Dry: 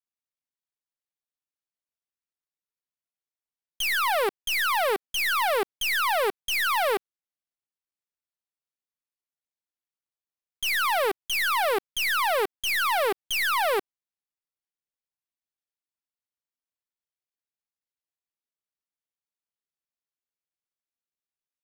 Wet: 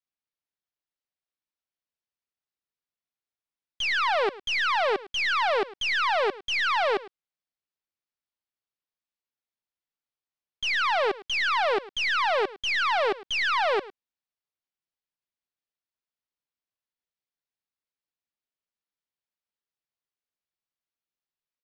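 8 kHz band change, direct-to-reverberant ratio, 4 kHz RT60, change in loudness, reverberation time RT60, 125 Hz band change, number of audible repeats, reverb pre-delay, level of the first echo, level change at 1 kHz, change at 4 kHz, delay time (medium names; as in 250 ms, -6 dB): -9.5 dB, no reverb, no reverb, -0.5 dB, no reverb, no reading, 1, no reverb, -18.5 dB, 0.0 dB, 0.0 dB, 106 ms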